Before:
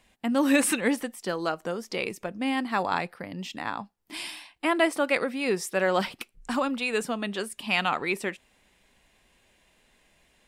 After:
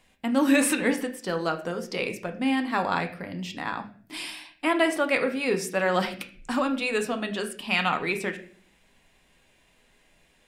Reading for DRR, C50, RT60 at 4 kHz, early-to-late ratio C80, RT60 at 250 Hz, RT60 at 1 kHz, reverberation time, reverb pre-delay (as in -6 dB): 5.0 dB, 12.0 dB, 0.40 s, 15.5 dB, 0.75 s, 0.40 s, 0.50 s, 4 ms